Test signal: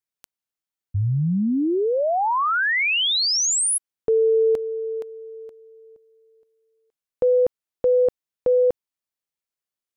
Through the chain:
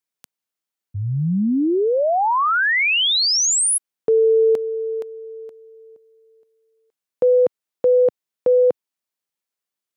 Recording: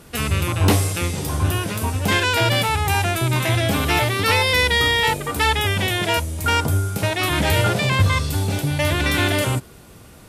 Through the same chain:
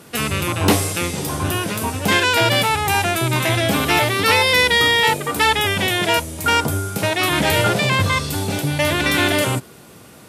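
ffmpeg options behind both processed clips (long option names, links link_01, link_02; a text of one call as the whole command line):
ffmpeg -i in.wav -af "highpass=140,volume=3dB" out.wav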